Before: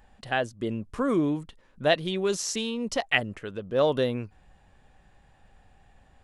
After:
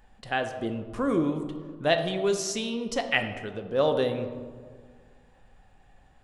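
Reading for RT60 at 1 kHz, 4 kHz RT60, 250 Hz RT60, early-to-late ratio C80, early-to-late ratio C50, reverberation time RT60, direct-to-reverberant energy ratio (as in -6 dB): 1.6 s, 0.85 s, 2.0 s, 10.0 dB, 8.5 dB, 1.8 s, 6.0 dB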